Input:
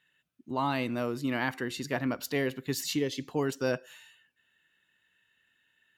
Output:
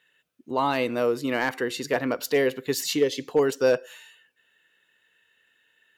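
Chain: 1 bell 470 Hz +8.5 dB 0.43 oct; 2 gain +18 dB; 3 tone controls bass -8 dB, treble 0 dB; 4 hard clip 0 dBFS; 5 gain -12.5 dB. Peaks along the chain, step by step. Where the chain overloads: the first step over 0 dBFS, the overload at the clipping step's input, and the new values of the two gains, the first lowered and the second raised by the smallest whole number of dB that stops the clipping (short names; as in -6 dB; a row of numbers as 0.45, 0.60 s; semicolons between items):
-13.5, +4.5, +4.0, 0.0, -12.5 dBFS; step 2, 4.0 dB; step 2 +14 dB, step 5 -8.5 dB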